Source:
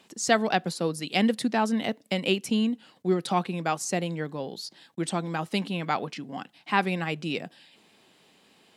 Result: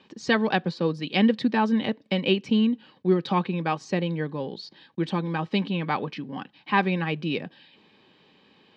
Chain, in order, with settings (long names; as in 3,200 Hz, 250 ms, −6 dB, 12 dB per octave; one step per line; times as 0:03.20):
low-pass filter 4,300 Hz 24 dB per octave
low-shelf EQ 95 Hz +8.5 dB
notch comb filter 690 Hz
level +2.5 dB